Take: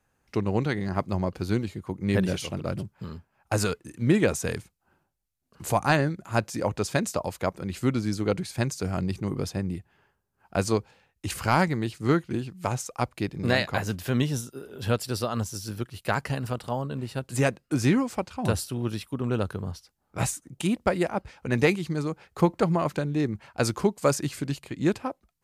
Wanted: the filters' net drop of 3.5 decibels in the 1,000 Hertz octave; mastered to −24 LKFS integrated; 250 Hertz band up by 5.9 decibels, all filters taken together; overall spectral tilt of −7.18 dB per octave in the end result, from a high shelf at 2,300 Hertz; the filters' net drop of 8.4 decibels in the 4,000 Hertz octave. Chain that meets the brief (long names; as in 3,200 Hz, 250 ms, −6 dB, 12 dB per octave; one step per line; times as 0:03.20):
parametric band 250 Hz +8 dB
parametric band 1,000 Hz −4 dB
high-shelf EQ 2,300 Hz −6 dB
parametric band 4,000 Hz −5 dB
level +1 dB